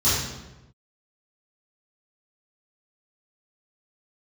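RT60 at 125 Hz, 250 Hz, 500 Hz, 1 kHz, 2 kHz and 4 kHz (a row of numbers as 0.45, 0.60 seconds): 1.3, 1.1, 1.1, 1.0, 0.90, 0.75 seconds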